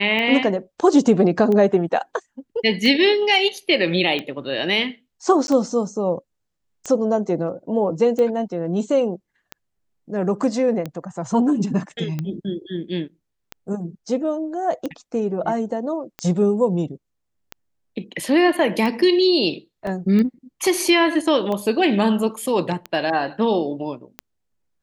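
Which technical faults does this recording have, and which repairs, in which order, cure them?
scratch tick 45 rpm −14 dBFS
0:05.47–0:05.48: drop-out 11 ms
0:19.87: drop-out 2.3 ms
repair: click removal
repair the gap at 0:05.47, 11 ms
repair the gap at 0:19.87, 2.3 ms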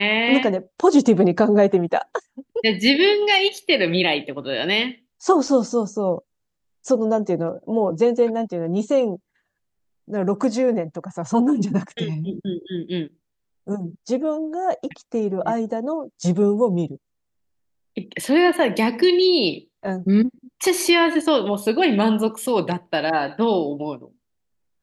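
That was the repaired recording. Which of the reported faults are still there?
none of them is left

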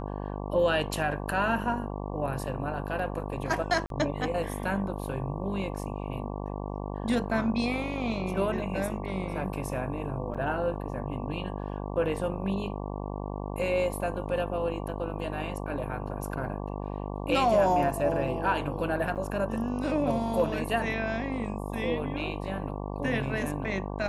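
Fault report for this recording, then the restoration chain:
mains buzz 50 Hz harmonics 23 −35 dBFS
0:03.86–0:03.90: drop-out 42 ms
0:10.34–0:10.35: drop-out 6.2 ms
0:19.15–0:19.16: drop-out 8 ms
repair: hum removal 50 Hz, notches 23
repair the gap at 0:03.86, 42 ms
repair the gap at 0:10.34, 6.2 ms
repair the gap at 0:19.15, 8 ms

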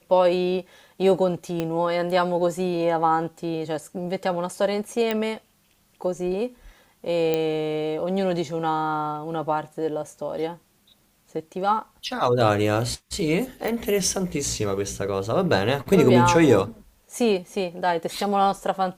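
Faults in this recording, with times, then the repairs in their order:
0:01.60: click −13 dBFS
0:05.11: click −11 dBFS
0:07.34: click −10 dBFS
0:13.68: click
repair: click removal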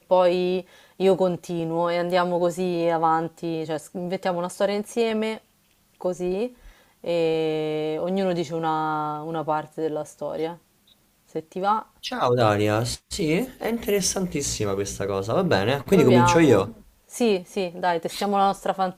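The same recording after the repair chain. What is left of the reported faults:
0:01.60: click

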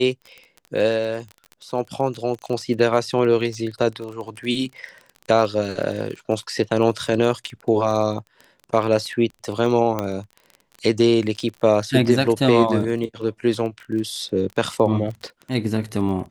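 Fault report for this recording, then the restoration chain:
surface crackle 23 per second −29 dBFS
0:09.99: click −10 dBFS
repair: click removal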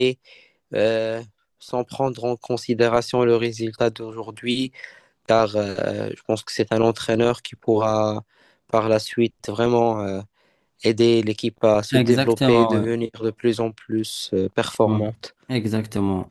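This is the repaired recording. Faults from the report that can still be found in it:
0:09.99: click

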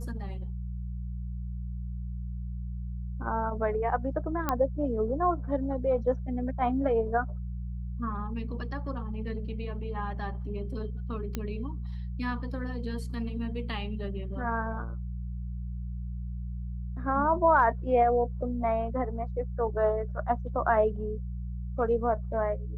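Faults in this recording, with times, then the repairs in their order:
mains hum 60 Hz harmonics 3 −35 dBFS
0:04.49: click −13 dBFS
0:11.35: click −18 dBFS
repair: click removal
hum removal 60 Hz, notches 3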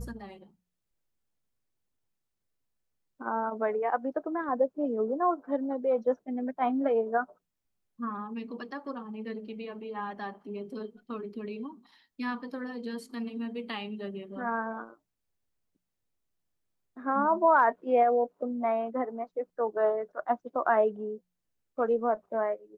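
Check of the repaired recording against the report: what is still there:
none of them is left

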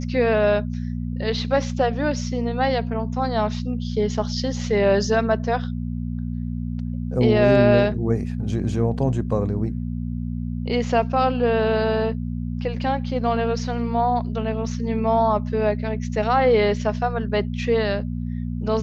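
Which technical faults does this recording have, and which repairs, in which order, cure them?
mains hum 60 Hz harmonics 4 −27 dBFS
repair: hum removal 60 Hz, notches 4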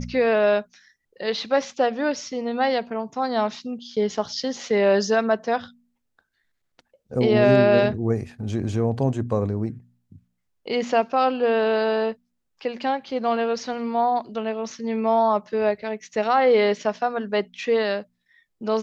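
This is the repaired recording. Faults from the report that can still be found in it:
none of them is left

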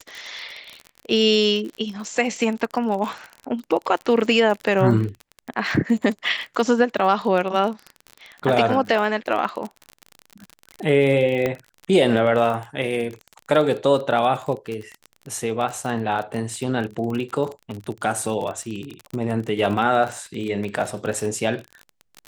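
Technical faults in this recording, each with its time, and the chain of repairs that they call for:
surface crackle 34 per second −27 dBFS
0:11.46: click −10 dBFS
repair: click removal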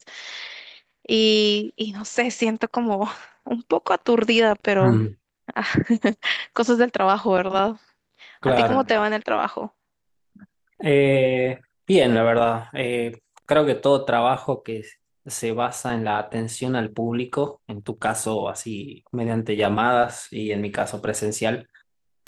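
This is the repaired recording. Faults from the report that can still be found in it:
none of them is left

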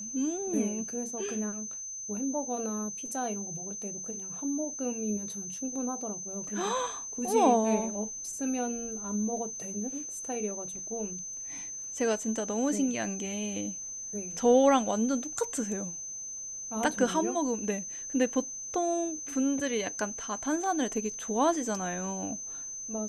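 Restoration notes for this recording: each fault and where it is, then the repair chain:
whistle 6,200 Hz −37 dBFS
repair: notch filter 6,200 Hz, Q 30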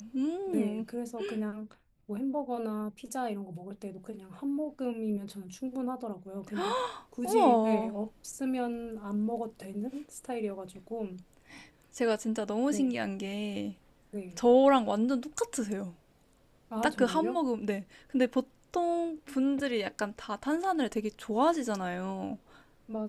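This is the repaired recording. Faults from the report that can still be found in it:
none of them is left

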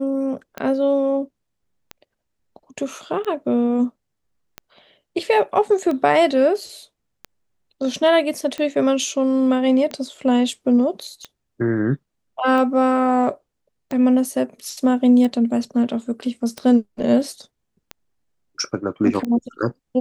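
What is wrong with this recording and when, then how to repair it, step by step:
scratch tick 45 rpm −15 dBFS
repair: click removal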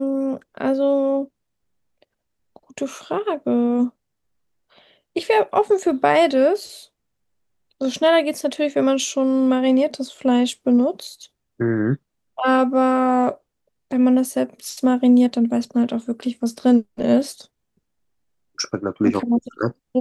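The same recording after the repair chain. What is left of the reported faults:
none of them is left

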